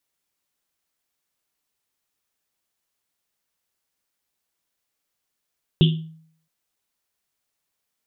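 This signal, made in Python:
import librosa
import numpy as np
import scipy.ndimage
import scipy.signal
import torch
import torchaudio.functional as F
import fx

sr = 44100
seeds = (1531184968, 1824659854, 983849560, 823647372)

y = fx.risset_drum(sr, seeds[0], length_s=0.67, hz=160.0, decay_s=0.61, noise_hz=3200.0, noise_width_hz=710.0, noise_pct=20)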